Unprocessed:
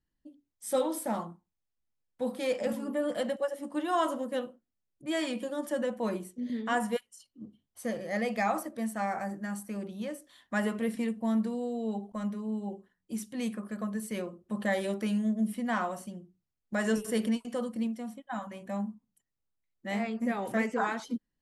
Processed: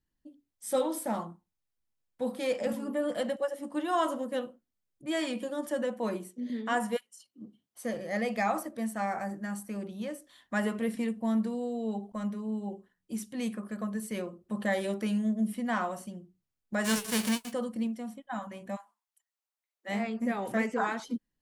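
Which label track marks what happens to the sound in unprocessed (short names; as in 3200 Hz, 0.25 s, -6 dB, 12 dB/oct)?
5.660000	7.940000	HPF 160 Hz
16.840000	17.510000	spectral whitening exponent 0.3
18.750000	19.880000	HPF 1000 Hz -> 430 Hz 24 dB/oct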